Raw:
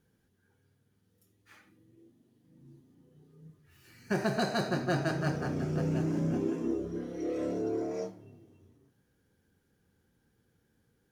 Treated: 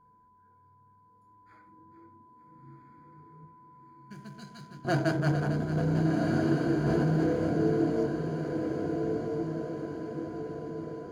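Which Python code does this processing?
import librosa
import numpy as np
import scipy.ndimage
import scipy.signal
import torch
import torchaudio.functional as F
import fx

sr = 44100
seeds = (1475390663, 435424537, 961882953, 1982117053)

y = fx.wiener(x, sr, points=15)
y = fx.tone_stack(y, sr, knobs='6-0-2', at=(3.45, 4.85))
y = fx.echo_split(y, sr, split_hz=410.0, low_ms=81, high_ms=449, feedback_pct=52, wet_db=-10.0)
y = y + 10.0 ** (-65.0 / 20.0) * np.sin(2.0 * np.pi * 1000.0 * np.arange(len(y)) / sr)
y = fx.ripple_eq(y, sr, per_octave=1.8, db=8)
y = fx.echo_diffused(y, sr, ms=1371, feedback_pct=53, wet_db=-3.0)
y = fx.env_flatten(y, sr, amount_pct=100, at=(6.86, 7.29))
y = y * librosa.db_to_amplitude(1.5)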